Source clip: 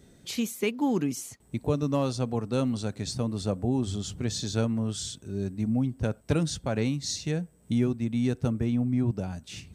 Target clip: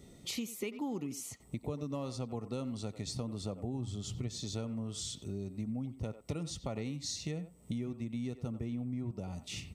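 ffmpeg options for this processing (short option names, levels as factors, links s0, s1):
-filter_complex "[0:a]asettb=1/sr,asplit=3[s0][s1][s2];[s0]atrim=end=3.734[s3];[s1]atrim=start=3.73:end=4.28,asetpts=PTS-STARTPTS,afade=t=in:d=0.004:c=qsin,afade=t=out:st=0.546:d=0.004:c=qsin,equalizer=f=120:w=6.3:g=11[s4];[s2]atrim=start=4.276[s5];[s3][s4]acrossfade=d=0.004:c1=hsin:c2=qsin[s6];[s6][s5]acrossfade=d=0.004:c1=qsin:c2=hsin,asplit=2[s7][s8];[s8]adelay=90,highpass=300,lowpass=3400,asoftclip=type=hard:threshold=0.0891,volume=0.2[s9];[s7][s9]amix=inputs=2:normalize=0,acompressor=threshold=0.0158:ratio=5,asuperstop=centerf=1600:order=8:qfactor=4.8"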